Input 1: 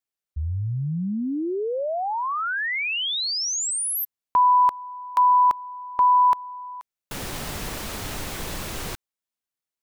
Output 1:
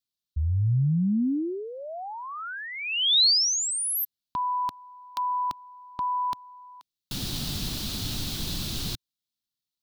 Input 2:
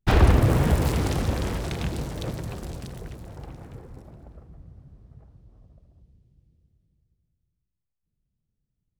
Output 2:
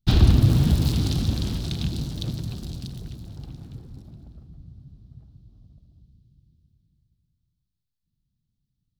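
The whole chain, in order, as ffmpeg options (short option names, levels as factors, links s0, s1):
-af "equalizer=f=125:t=o:w=1:g=4,equalizer=f=250:t=o:w=1:g=4,equalizer=f=500:t=o:w=1:g=-11,equalizer=f=1000:t=o:w=1:g=-7,equalizer=f=2000:t=o:w=1:g=-11,equalizer=f=4000:t=o:w=1:g=11,equalizer=f=8000:t=o:w=1:g=-4"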